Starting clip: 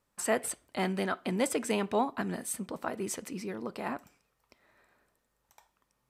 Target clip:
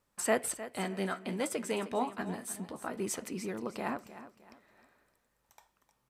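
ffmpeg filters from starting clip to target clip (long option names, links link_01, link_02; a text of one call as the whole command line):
ffmpeg -i in.wav -filter_complex "[0:a]asettb=1/sr,asplit=3[link_01][link_02][link_03];[link_01]atrim=end=0.644[link_04];[link_02]atrim=start=0.64:end=2.97,asetpts=PTS-STARTPTS,afade=type=in:duration=0.004:curve=qsin,afade=type=out:start_time=2.326:duration=0.004:curve=qsin,flanger=delay=7.9:depth=8.8:regen=45:speed=1.1:shape=triangular[link_05];[link_03]atrim=start=2.966[link_06];[link_04][link_05]acrossfade=duration=0.004:curve1=hsin:curve2=qsin[link_07];[link_07][link_06]acrossfade=duration=0.004:curve1=qsin:curve2=hsin,aecho=1:1:308|616|924:0.2|0.0678|0.0231" out.wav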